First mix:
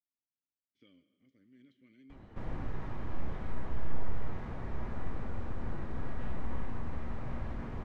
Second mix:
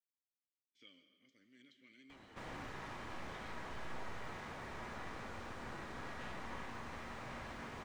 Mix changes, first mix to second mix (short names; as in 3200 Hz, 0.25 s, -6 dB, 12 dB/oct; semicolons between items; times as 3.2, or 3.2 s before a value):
speech: send +6.0 dB; master: add tilt +4 dB/oct